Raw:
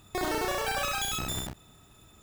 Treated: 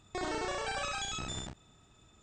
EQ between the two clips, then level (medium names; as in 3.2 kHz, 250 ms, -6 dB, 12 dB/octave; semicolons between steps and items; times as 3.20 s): brick-wall FIR low-pass 8.8 kHz; -5.5 dB